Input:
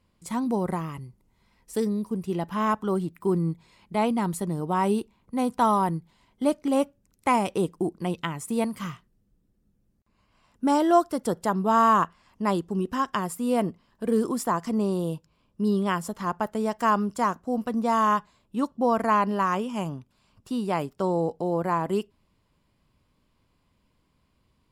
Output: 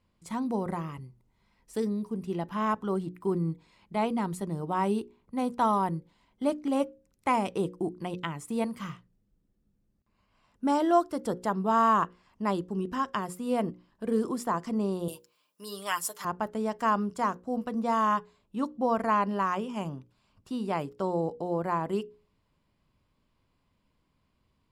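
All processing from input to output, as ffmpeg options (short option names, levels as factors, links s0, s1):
-filter_complex "[0:a]asettb=1/sr,asplit=3[s0][s1][s2];[s0]atrim=end=15.084[s3];[s1]atrim=start=15.08:end=16.25,asetpts=PTS-STARTPTS,afade=t=in:d=0.004:c=qsin,afade=t=out:st=1.166:d=0.004:c=qsin,highpass=f=550:p=1,aemphasis=mode=production:type=riaa,aecho=1:1:6.6:0.55,atrim=end_sample=51597[s4];[s2]atrim=start=16.246[s5];[s3][s4]acrossfade=d=0.004:c1=hsin:c2=qsin[s6];[s6][s5]acrossfade=d=0.004:c1=qsin:c2=hsin,highshelf=f=8200:g=-8,bandreject=f=60:t=h:w=6,bandreject=f=120:t=h:w=6,bandreject=f=180:t=h:w=6,bandreject=f=240:t=h:w=6,bandreject=f=300:t=h:w=6,bandreject=f=360:t=h:w=6,bandreject=f=420:t=h:w=6,bandreject=f=480:t=h:w=6,bandreject=f=540:t=h:w=6,volume=0.668"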